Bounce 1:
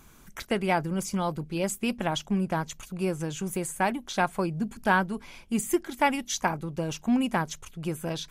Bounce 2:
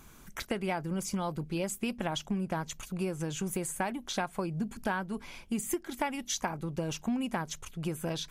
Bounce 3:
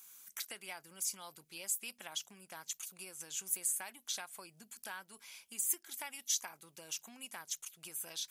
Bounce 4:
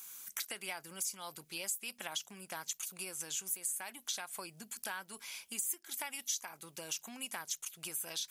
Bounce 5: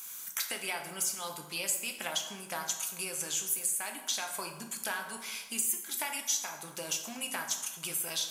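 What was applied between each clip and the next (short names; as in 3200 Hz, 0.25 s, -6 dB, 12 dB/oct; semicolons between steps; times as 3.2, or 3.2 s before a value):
compressor 6:1, threshold -29 dBFS, peak gain reduction 11 dB
differentiator; gain +2.5 dB
compressor 3:1, threshold -44 dBFS, peak gain reduction 12 dB; gain +7 dB
plate-style reverb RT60 1.1 s, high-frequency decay 0.6×, DRR 3 dB; gain +5 dB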